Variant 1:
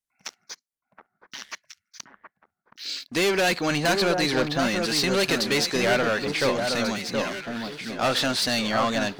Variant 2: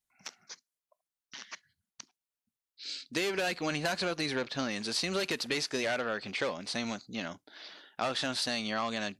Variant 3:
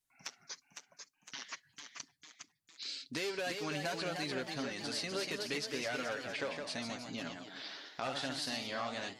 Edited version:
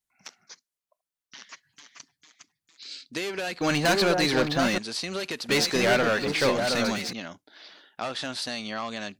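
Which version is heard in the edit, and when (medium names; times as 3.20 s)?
2
1.49–2.91 s: from 3
3.61–4.78 s: from 1
5.49–7.13 s: from 1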